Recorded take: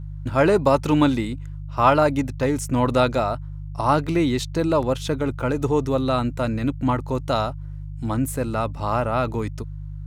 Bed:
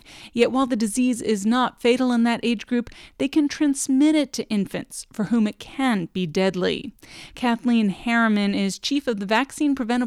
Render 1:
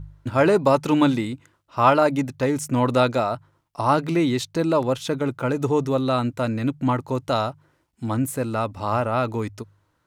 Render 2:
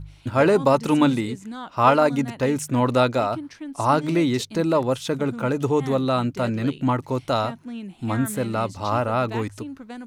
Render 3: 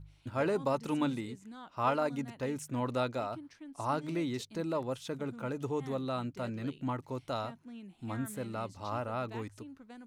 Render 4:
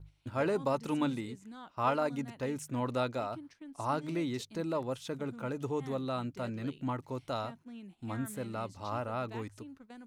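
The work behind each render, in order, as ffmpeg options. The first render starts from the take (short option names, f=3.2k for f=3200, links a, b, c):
-af "bandreject=f=50:t=h:w=4,bandreject=f=100:t=h:w=4,bandreject=f=150:t=h:w=4"
-filter_complex "[1:a]volume=-15dB[a];[0:a][a]amix=inputs=2:normalize=0"
-af "volume=-13.5dB"
-af "agate=range=-8dB:threshold=-53dB:ratio=16:detection=peak"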